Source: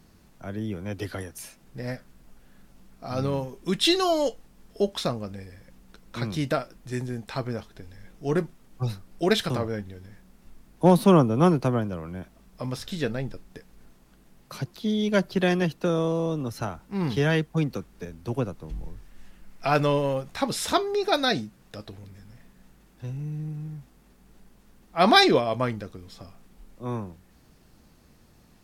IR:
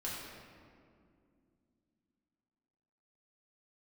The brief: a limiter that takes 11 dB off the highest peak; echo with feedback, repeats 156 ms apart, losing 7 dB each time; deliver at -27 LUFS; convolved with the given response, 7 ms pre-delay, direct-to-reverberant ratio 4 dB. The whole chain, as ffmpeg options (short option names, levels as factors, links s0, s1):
-filter_complex "[0:a]alimiter=limit=0.178:level=0:latency=1,aecho=1:1:156|312|468|624|780:0.447|0.201|0.0905|0.0407|0.0183,asplit=2[s0][s1];[1:a]atrim=start_sample=2205,adelay=7[s2];[s1][s2]afir=irnorm=-1:irlink=0,volume=0.501[s3];[s0][s3]amix=inputs=2:normalize=0,volume=0.891"